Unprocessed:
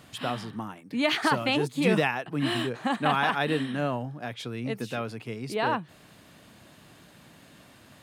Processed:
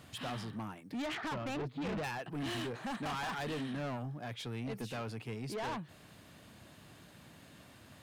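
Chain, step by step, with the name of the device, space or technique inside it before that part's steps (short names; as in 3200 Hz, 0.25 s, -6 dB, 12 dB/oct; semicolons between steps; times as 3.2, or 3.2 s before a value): 1.02–2.04 air absorption 340 m; open-reel tape (soft clip -31.5 dBFS, distortion -5 dB; bell 82 Hz +5 dB 1.17 oct; white noise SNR 46 dB); gain -4 dB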